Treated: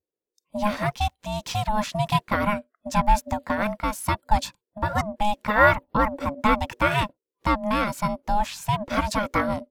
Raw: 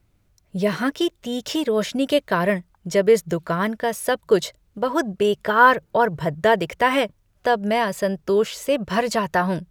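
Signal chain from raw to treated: ring modulator 420 Hz; spectral noise reduction 27 dB

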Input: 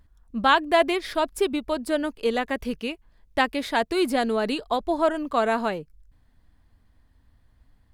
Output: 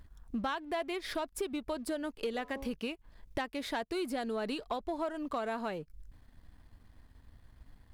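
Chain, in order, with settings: 2.29–2.74 de-hum 90.91 Hz, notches 14; compressor 6:1, threshold -37 dBFS, peak gain reduction 21.5 dB; sample leveller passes 1

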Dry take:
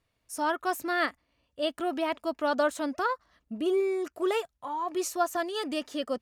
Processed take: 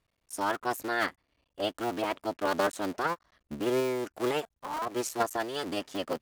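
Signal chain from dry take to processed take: cycle switcher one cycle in 3, muted

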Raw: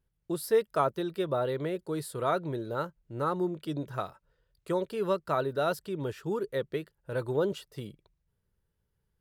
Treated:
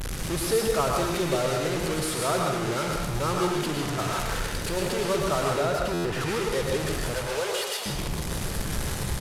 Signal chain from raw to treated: delta modulation 64 kbps, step -26.5 dBFS; 7.14–7.86 HPF 470 Hz 24 dB/oct; frequency-shifting echo 0.159 s, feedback 46%, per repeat +38 Hz, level -16 dB; 4.02–4.77 overloaded stage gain 29.5 dB; 5.53–6.21 high shelf 3900 Hz -10.5 dB; sample leveller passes 1; reverb, pre-delay 0.1 s, DRR 0.5 dB; stuck buffer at 5.93, samples 512, times 9; gain -2.5 dB

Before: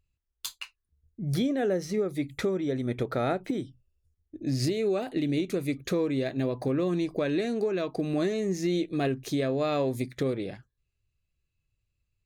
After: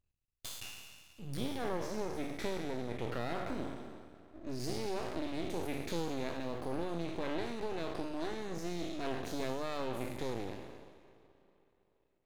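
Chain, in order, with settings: spectral trails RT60 1.61 s; spring tank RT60 3.9 s, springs 36/47 ms, chirp 50 ms, DRR 17 dB; half-wave rectifier; gain -8.5 dB

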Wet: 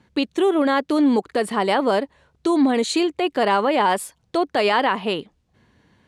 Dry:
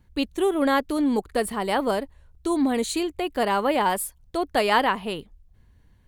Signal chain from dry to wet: in parallel at -2.5 dB: compressor, threshold -34 dBFS, peak gain reduction 17.5 dB; on the sum: limiter -14.5 dBFS, peak gain reduction 7 dB; BPF 190–6300 Hz; gain +5 dB

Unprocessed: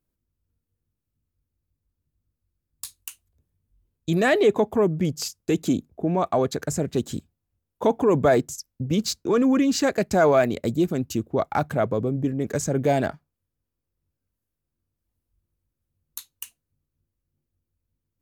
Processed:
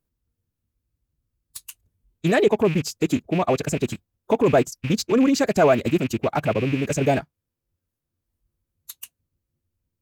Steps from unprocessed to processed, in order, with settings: rattling part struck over -30 dBFS, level -23 dBFS; time stretch by phase-locked vocoder 0.55×; gain +2.5 dB

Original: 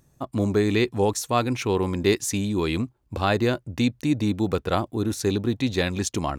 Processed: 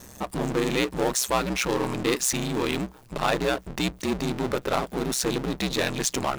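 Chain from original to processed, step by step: power-law curve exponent 0.5; low shelf 240 Hz -11.5 dB; ring modulator 64 Hz; gain -2.5 dB

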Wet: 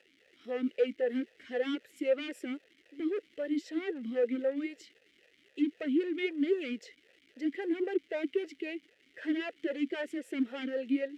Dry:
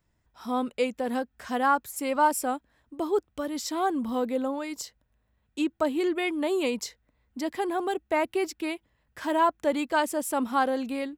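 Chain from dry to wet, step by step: hard clip -26 dBFS, distortion -8 dB; dynamic EQ 1300 Hz, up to +6 dB, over -44 dBFS, Q 1.6; crackle 530/s -40 dBFS; vowel sweep e-i 3.8 Hz; gain +6 dB

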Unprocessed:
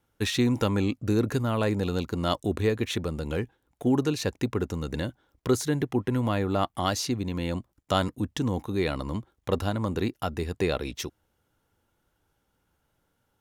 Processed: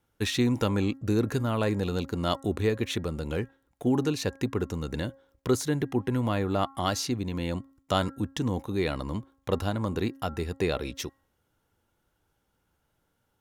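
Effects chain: de-hum 271.4 Hz, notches 7; gain -1 dB

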